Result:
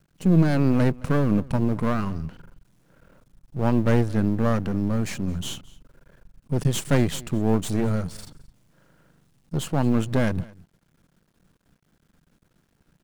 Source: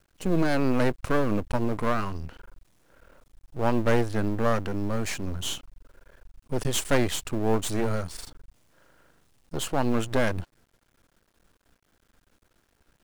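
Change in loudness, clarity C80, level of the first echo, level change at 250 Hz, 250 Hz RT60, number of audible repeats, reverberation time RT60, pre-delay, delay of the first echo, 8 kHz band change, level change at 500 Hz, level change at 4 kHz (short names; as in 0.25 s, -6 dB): +3.5 dB, none, -22.5 dB, +5.5 dB, none, 1, none, none, 0.217 s, -2.0 dB, 0.0 dB, -2.0 dB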